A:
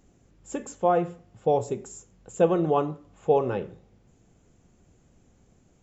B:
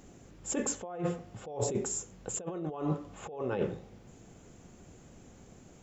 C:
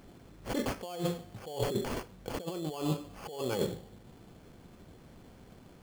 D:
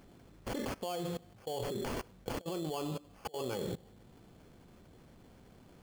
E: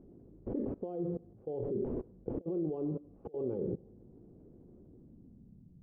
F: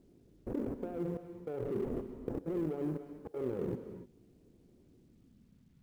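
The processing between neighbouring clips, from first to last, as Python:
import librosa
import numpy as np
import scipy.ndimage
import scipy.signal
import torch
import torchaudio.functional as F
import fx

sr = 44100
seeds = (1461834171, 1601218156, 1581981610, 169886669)

y1 = fx.low_shelf(x, sr, hz=120.0, db=-6.5)
y1 = fx.over_compress(y1, sr, threshold_db=-35.0, ratio=-1.0)
y2 = fx.sample_hold(y1, sr, seeds[0], rate_hz=3800.0, jitter_pct=0)
y3 = fx.level_steps(y2, sr, step_db=21)
y3 = y3 * 10.0 ** (5.0 / 20.0)
y4 = fx.filter_sweep_lowpass(y3, sr, from_hz=380.0, to_hz=160.0, start_s=4.79, end_s=5.78, q=1.8)
y5 = fx.law_mismatch(y4, sr, coded='A')
y5 = fx.rev_gated(y5, sr, seeds[1], gate_ms=320, shape='rising', drr_db=9.5)
y5 = y5 * 10.0 ** (1.0 / 20.0)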